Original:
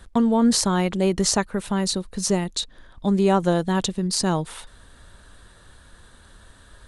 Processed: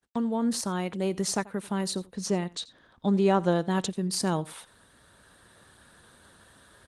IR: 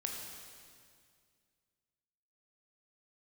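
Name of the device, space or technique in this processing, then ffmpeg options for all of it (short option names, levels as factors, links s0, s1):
video call: -filter_complex "[0:a]asplit=3[s0][s1][s2];[s0]afade=t=out:st=2.13:d=0.02[s3];[s1]lowpass=6700,afade=t=in:st=2.13:d=0.02,afade=t=out:st=3.69:d=0.02[s4];[s2]afade=t=in:st=3.69:d=0.02[s5];[s3][s4][s5]amix=inputs=3:normalize=0,highpass=120,aecho=1:1:86:0.0841,dynaudnorm=f=630:g=3:m=2.51,agate=range=0.00251:threshold=0.00282:ratio=16:detection=peak,volume=0.355" -ar 48000 -c:a libopus -b:a 24k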